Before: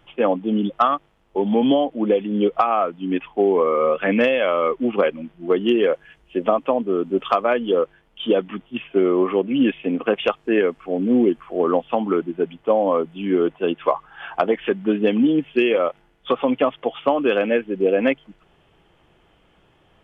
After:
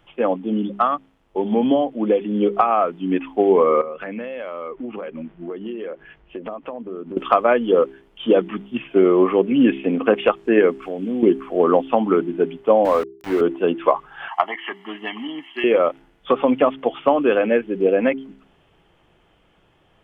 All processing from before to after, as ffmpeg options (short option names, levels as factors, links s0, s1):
-filter_complex "[0:a]asettb=1/sr,asplit=3[s0][s1][s2];[s0]atrim=end=3.814[s3];[s1]atrim=start=3.81:end=7.17,asetpts=PTS-STARTPTS,afade=t=in:d=0.004:c=qsin,afade=t=out:st=3.356:d=0.004:c=qsin,lowpass=2600,acompressor=threshold=0.0316:ratio=8:attack=3.2:release=140:knee=1:detection=peak[s4];[s2]atrim=start=7.166[s5];[s3][s4]acrossfade=d=0.004:c1=hsin:c2=qsin[s6];[s6][s5]acrossfade=d=0.004:c1=qsin:c2=hsin,asettb=1/sr,asplit=3[s7][s8][s9];[s7]atrim=end=10.824[s10];[s8]atrim=start=10.82:end=11.23,asetpts=PTS-STARTPTS,afade=t=in:d=0.004:c=qsin,afade=t=out:st=0.406:d=0.004:c=qsin,highshelf=f=3000:g=10.5,acompressor=threshold=0.0316:ratio=2.5:attack=3.2:release=140:knee=1:detection=peak[s11];[s9]atrim=start=11.226[s12];[s10][s11]acrossfade=d=0.004:c1=hsin:c2=qsin[s13];[s13][s12]acrossfade=d=0.004:c1=qsin:c2=hsin,asettb=1/sr,asplit=3[s14][s15][s16];[s14]atrim=end=12.854[s17];[s15]atrim=start=12.85:end=13.41,asetpts=PTS-STARTPTS,afade=t=in:d=0.004:c=qsin,afade=t=out:st=0.556:d=0.004:c=qsin,highpass=f=42:w=0.5412,highpass=f=42:w=1.3066,bass=f=250:g=-14,treble=f=4000:g=-9,aeval=exprs='val(0)*gte(abs(val(0)),0.0473)':c=same[s18];[s16]atrim=start=13.406[s19];[s17][s18]acrossfade=d=0.004:c1=hsin:c2=qsin[s20];[s20][s19]acrossfade=d=0.004:c1=qsin:c2=hsin,asettb=1/sr,asplit=3[s21][s22][s23];[s21]atrim=end=14.284[s24];[s22]atrim=start=14.28:end=15.64,asetpts=PTS-STARTPTS,afade=t=in:d=0.004:c=qsin,afade=t=out:st=1.356:d=0.004:c=qsin,highpass=810,aecho=1:1:1:0.97,atrim=end_sample=59976[s25];[s23]atrim=start=15.636[s26];[s24][s25]acrossfade=d=0.004:c1=hsin:c2=qsin[s27];[s27][s26]acrossfade=d=0.004:c1=qsin:c2=hsin,acrossover=split=2700[s28][s29];[s29]acompressor=threshold=0.00355:ratio=4:attack=1:release=60[s30];[s28][s30]amix=inputs=2:normalize=0,bandreject=f=66.97:t=h:w=4,bandreject=f=133.94:t=h:w=4,bandreject=f=200.91:t=h:w=4,bandreject=f=267.88:t=h:w=4,bandreject=f=334.85:t=h:w=4,bandreject=f=401.82:t=h:w=4,dynaudnorm=f=310:g=17:m=3.76,volume=0.891"